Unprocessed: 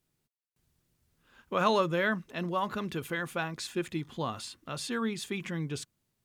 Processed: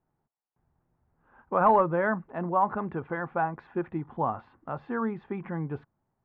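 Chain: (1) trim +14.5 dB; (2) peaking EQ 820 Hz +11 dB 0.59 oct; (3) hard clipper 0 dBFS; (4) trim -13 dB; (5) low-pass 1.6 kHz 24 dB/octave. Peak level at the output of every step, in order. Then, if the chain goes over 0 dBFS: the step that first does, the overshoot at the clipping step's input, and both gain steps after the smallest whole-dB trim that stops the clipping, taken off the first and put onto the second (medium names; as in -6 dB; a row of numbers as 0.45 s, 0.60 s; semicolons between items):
+3.5 dBFS, +6.5 dBFS, 0.0 dBFS, -13.0 dBFS, -11.5 dBFS; step 1, 6.5 dB; step 1 +7.5 dB, step 4 -6 dB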